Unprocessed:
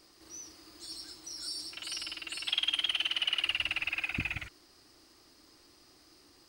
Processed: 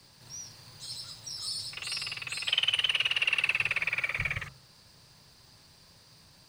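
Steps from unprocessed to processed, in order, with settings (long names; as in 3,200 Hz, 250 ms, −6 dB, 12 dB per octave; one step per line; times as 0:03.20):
hum removal 67.56 Hz, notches 24
frequency shifter −200 Hz
level +3.5 dB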